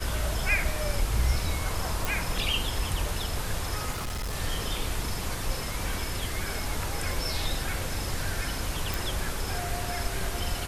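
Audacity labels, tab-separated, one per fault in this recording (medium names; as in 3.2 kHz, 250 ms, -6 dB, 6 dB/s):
2.050000	2.050000	pop
3.910000	4.340000	clipped -29 dBFS
8.940000	8.940000	pop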